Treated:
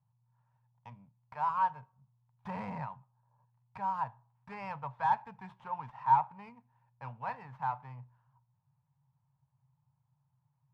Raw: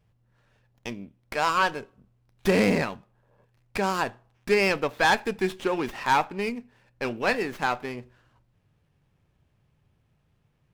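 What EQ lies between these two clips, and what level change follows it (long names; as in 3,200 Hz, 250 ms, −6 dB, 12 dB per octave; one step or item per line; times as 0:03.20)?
pair of resonant band-passes 350 Hz, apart 2.8 octaves
0.0 dB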